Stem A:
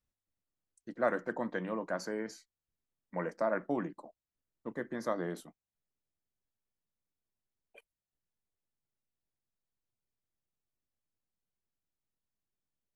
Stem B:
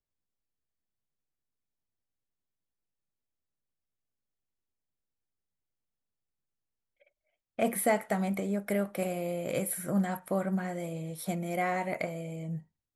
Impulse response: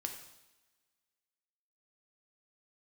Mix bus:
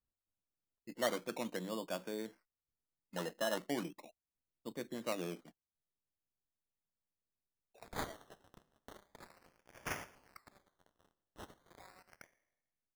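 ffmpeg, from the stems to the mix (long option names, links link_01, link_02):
-filter_complex "[0:a]lowpass=1600,volume=-4.5dB[link_01];[1:a]aderivative,aeval=exprs='sgn(val(0))*max(abs(val(0))-0.00376,0)':channel_layout=same,adelay=200,volume=-10dB,asplit=2[link_02][link_03];[link_03]volume=-5dB[link_04];[2:a]atrim=start_sample=2205[link_05];[link_04][link_05]afir=irnorm=-1:irlink=0[link_06];[link_01][link_02][link_06]amix=inputs=3:normalize=0,acrusher=samples=15:mix=1:aa=0.000001:lfo=1:lforange=9:lforate=0.38"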